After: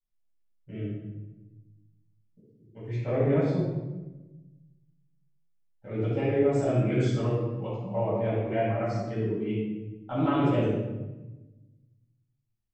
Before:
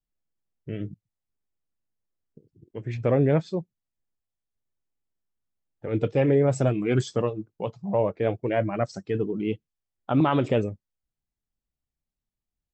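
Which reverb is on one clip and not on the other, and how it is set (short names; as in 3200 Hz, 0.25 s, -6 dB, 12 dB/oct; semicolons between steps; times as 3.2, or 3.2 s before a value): shoebox room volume 590 m³, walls mixed, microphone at 7.5 m; gain -17.5 dB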